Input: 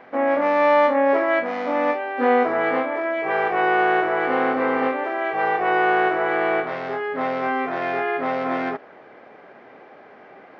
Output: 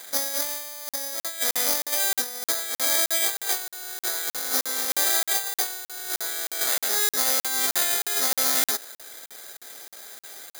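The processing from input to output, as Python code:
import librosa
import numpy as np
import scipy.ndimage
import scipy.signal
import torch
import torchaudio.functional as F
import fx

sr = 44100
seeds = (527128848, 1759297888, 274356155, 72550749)

y = fx.highpass(x, sr, hz=340.0, slope=6)
y = fx.band_shelf(y, sr, hz=2000.0, db=8.0, octaves=1.3)
y = fx.over_compress(y, sr, threshold_db=-23.0, ratio=-0.5)
y = (np.kron(y[::8], np.eye(8)[0]) * 8)[:len(y)]
y = fx.buffer_crackle(y, sr, first_s=0.89, period_s=0.31, block=2048, kind='zero')
y = y * 10.0 ** (-11.0 / 20.0)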